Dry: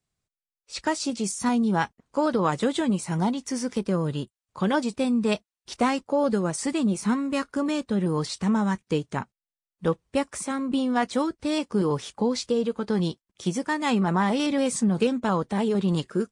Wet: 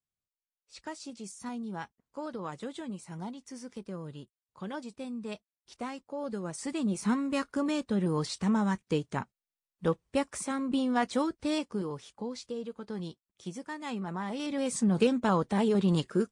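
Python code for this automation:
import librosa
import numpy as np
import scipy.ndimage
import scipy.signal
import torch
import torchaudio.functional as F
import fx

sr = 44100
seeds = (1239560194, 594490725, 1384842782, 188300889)

y = fx.gain(x, sr, db=fx.line((6.08, -15.0), (7.08, -4.0), (11.53, -4.0), (11.93, -13.0), (14.24, -13.0), (14.97, -2.0)))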